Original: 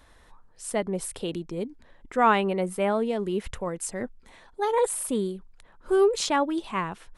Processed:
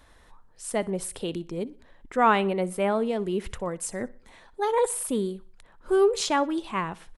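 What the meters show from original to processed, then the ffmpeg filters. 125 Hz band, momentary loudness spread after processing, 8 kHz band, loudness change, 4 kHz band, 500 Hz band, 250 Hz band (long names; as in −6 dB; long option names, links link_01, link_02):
0.0 dB, 13 LU, 0.0 dB, 0.0 dB, 0.0 dB, 0.0 dB, 0.0 dB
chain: -af "aecho=1:1:61|122|183:0.0841|0.037|0.0163"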